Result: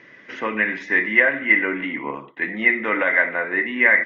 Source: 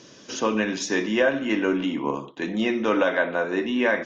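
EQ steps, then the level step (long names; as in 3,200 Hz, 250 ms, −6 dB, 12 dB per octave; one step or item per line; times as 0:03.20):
low-pass with resonance 2,000 Hz, resonance Q 16
low-shelf EQ 390 Hz −3 dB
−2.5 dB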